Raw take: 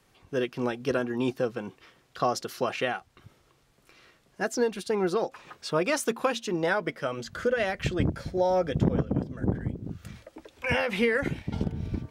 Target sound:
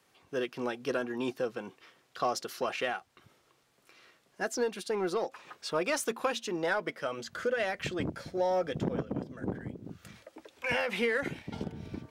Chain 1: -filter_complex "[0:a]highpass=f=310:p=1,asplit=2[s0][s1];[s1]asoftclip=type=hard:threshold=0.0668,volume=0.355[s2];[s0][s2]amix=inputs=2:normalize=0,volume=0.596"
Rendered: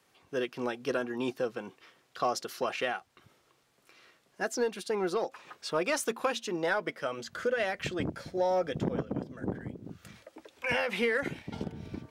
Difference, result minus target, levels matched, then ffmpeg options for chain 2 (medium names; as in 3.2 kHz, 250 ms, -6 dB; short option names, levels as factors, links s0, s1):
hard clipper: distortion -6 dB
-filter_complex "[0:a]highpass=f=310:p=1,asplit=2[s0][s1];[s1]asoftclip=type=hard:threshold=0.0335,volume=0.355[s2];[s0][s2]amix=inputs=2:normalize=0,volume=0.596"